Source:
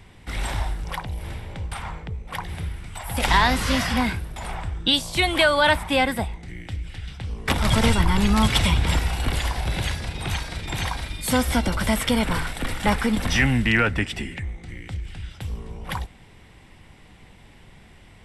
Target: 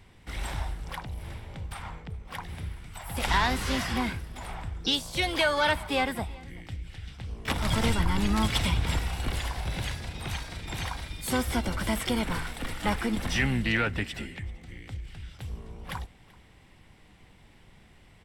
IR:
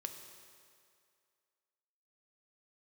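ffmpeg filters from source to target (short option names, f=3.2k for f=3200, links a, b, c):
-filter_complex "[0:a]asplit=2[a][b];[b]asetrate=66075,aresample=44100,atempo=0.66742,volume=-12dB[c];[a][c]amix=inputs=2:normalize=0,aecho=1:1:384:0.0708,volume=-7dB"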